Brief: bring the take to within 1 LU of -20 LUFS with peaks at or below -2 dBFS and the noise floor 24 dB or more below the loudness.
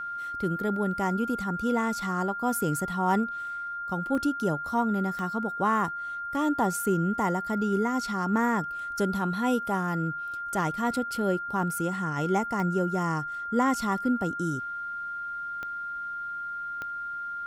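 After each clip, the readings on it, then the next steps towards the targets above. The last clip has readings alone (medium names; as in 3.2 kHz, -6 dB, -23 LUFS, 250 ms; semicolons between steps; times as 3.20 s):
clicks found 5; steady tone 1.4 kHz; tone level -32 dBFS; loudness -28.5 LUFS; peak level -13.0 dBFS; loudness target -20.0 LUFS
-> de-click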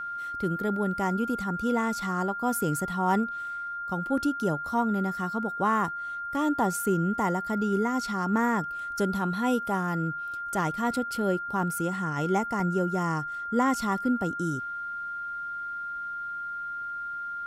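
clicks found 0; steady tone 1.4 kHz; tone level -32 dBFS
-> band-stop 1.4 kHz, Q 30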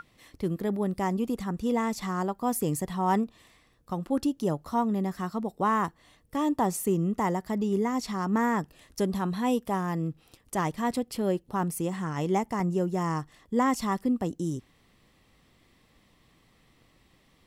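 steady tone not found; loudness -29.0 LUFS; peak level -13.5 dBFS; loudness target -20.0 LUFS
-> trim +9 dB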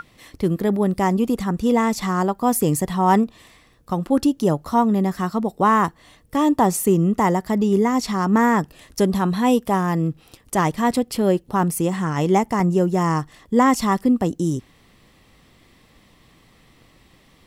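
loudness -20.0 LUFS; peak level -4.5 dBFS; noise floor -55 dBFS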